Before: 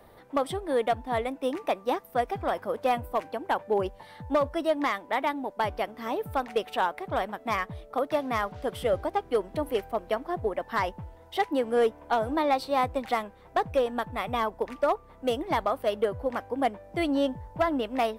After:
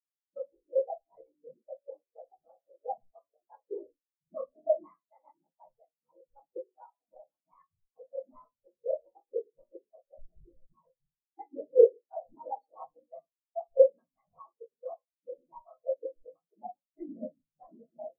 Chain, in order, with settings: 10.14–10.88 s: Schmitt trigger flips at -35.5 dBFS; whisper effect; simulated room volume 85 m³, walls mixed, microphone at 0.63 m; spectral contrast expander 4:1

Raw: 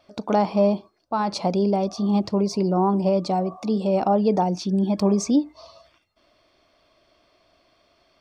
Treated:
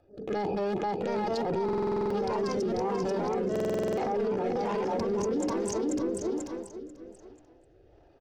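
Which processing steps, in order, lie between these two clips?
local Wiener filter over 41 samples; transient shaper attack -12 dB, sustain +8 dB; hum notches 60/120/180/240/300/360/420 Hz; comb 2.4 ms, depth 67%; ever faster or slower copies 763 ms, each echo +2 st, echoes 2; on a send: feedback delay 489 ms, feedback 27%, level -4.5 dB; on the sum: rotary cabinet horn 1.2 Hz; peak limiter -29.5 dBFS, peak gain reduction 19 dB; buffer glitch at 1.64/3.51 s, samples 2048, times 9; trim +7 dB

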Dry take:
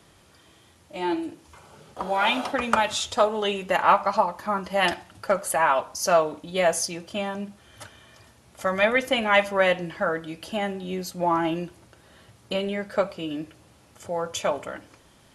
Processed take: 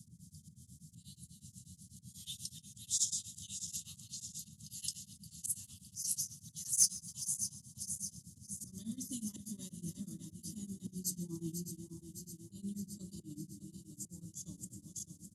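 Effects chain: backward echo that repeats 306 ms, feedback 78%, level -9.5 dB; inverse Chebyshev band-stop 430–2500 Hz, stop band 60 dB; treble shelf 6.4 kHz -12 dB; de-hum 189.6 Hz, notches 36; slow attack 136 ms; high-pass sweep 2.6 kHz -> 360 Hz, 5.95–8.58 s; in parallel at -6 dB: overload inside the chain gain 33.5 dB; on the sum: band noise 77–200 Hz -64 dBFS; on a send: feedback delay 138 ms, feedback 59%, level -20 dB; on the sum: tremolo of two beating tones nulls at 8.2 Hz; trim +9.5 dB

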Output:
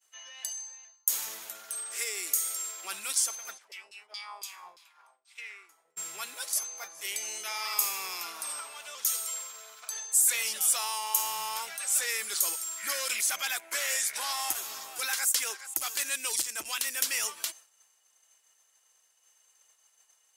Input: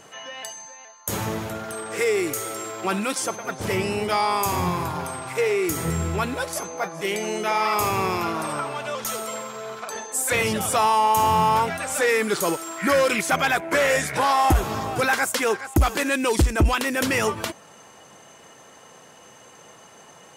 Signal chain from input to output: high-pass 270 Hz 6 dB/octave; differentiator; 3.57–5.96 s: LFO band-pass saw down 6.2 Hz -> 1 Hz 440–4800 Hz; expander -46 dBFS; dynamic bell 5.2 kHz, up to +3 dB, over -43 dBFS, Q 0.86

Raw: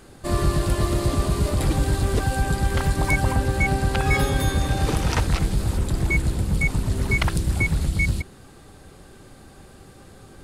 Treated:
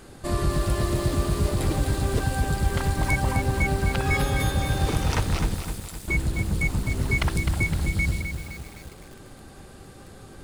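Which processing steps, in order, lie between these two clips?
in parallel at -1 dB: compression, threshold -34 dBFS, peak gain reduction 18 dB; 5.54–6.08 s: on the sum: differentiator; bit-crushed delay 257 ms, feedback 55%, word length 6-bit, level -7 dB; trim -4.5 dB

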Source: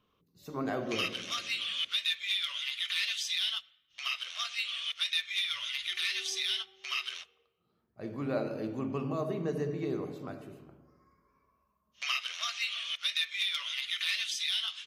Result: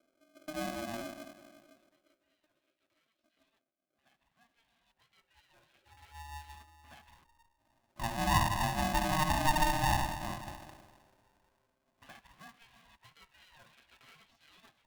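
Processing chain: low-pass sweep 170 Hz -> 510 Hz, 2.89–6.87 s; polarity switched at an audio rate 460 Hz

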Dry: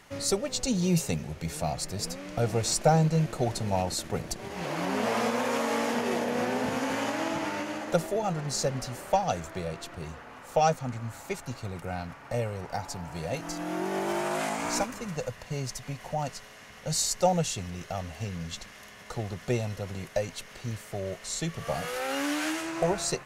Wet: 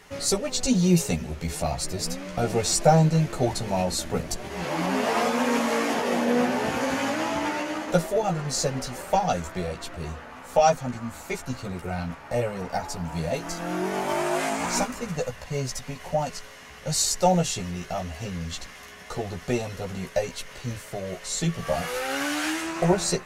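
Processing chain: chorus voices 6, 0.33 Hz, delay 14 ms, depth 2.8 ms; trim +7 dB

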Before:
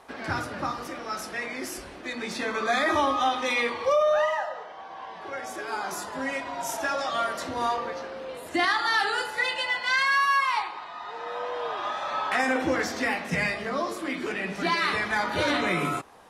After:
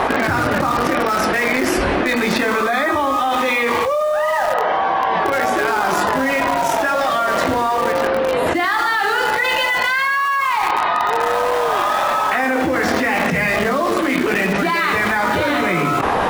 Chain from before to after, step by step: tone controls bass 0 dB, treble -14 dB; in parallel at -11 dB: bit crusher 5-bit; on the sum: level flattener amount 100%

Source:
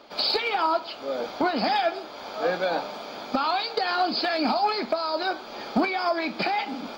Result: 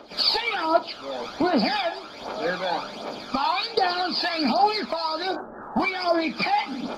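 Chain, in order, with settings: 5.35–5.80 s: steep low-pass 1.7 kHz 96 dB/octave; phaser 1.3 Hz, delay 1.2 ms, feedback 60%; Vorbis 32 kbps 44.1 kHz

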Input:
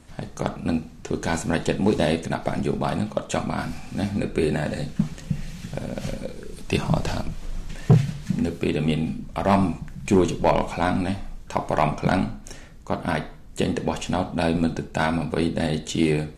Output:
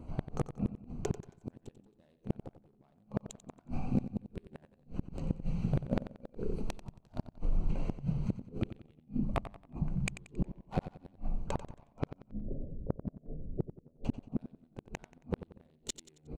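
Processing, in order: local Wiener filter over 25 samples; 12.13–14.05 s: steep low-pass 590 Hz 48 dB/octave; compression 4:1, threshold -25 dBFS, peak gain reduction 11.5 dB; saturation -18.5 dBFS, distortion -19 dB; inverted gate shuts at -22 dBFS, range -41 dB; feedback delay 91 ms, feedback 38%, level -12.5 dB; trim +3.5 dB

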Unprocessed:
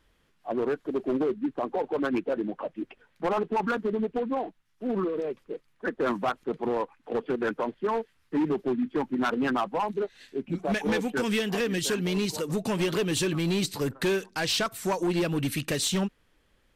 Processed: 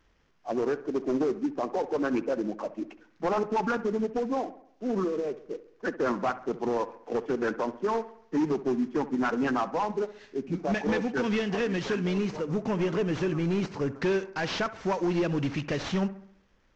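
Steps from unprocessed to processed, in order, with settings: CVSD coder 32 kbps; peaking EQ 4 kHz -6.5 dB 1.1 oct, from 12.18 s -13.5 dB, from 13.98 s -7 dB; bucket-brigade echo 67 ms, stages 1024, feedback 49%, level -15 dB

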